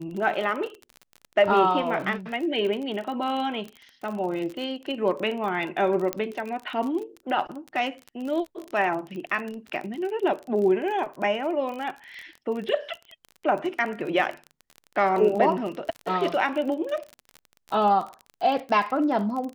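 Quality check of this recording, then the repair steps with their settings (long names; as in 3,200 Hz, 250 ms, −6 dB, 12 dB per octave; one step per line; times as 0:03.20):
surface crackle 36 per second −31 dBFS
0:06.13: click −11 dBFS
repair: click removal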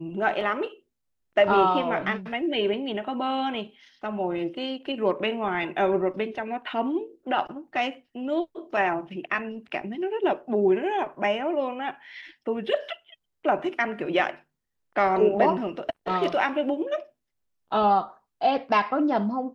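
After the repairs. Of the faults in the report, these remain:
none of them is left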